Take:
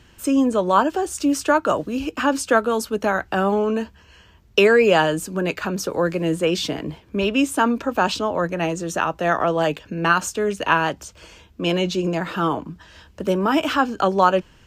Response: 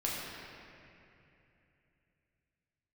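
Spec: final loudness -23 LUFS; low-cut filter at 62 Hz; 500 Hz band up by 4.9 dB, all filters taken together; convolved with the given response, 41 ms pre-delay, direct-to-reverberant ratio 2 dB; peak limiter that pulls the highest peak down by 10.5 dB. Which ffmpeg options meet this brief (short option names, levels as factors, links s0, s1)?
-filter_complex "[0:a]highpass=62,equalizer=f=500:t=o:g=6,alimiter=limit=0.282:level=0:latency=1,asplit=2[s0][s1];[1:a]atrim=start_sample=2205,adelay=41[s2];[s1][s2]afir=irnorm=-1:irlink=0,volume=0.398[s3];[s0][s3]amix=inputs=2:normalize=0,volume=0.631"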